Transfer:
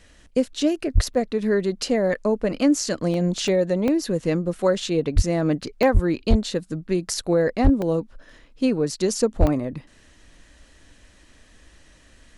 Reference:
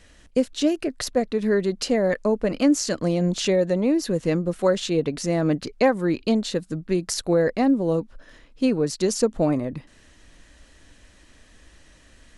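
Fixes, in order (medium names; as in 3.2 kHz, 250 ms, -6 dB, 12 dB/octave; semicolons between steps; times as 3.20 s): clip repair -8 dBFS; de-plosive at 0.94/5.15/5.93/6.29/7.63/9.39 s; interpolate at 1.14/3.14/3.48/3.88/5.83/7.82/9.47 s, 1.3 ms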